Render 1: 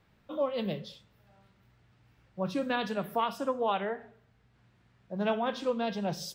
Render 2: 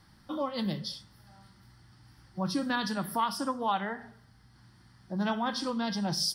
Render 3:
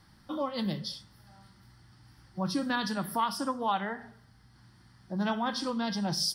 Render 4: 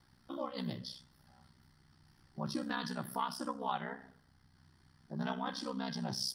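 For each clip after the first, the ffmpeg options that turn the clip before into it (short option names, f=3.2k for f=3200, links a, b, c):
-filter_complex "[0:a]superequalizer=7b=0.316:8b=0.398:12b=0.398:14b=3.16:16b=3.55,asplit=2[a][b];[b]acompressor=threshold=-42dB:ratio=6,volume=2dB[c];[a][c]amix=inputs=2:normalize=0"
-af anull
-af "aeval=exprs='val(0)*sin(2*PI*32*n/s)':c=same,volume=-4.5dB"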